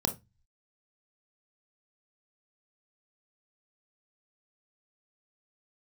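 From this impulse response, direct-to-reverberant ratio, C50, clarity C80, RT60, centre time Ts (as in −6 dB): 6.0 dB, 15.0 dB, 24.5 dB, 0.20 s, 11 ms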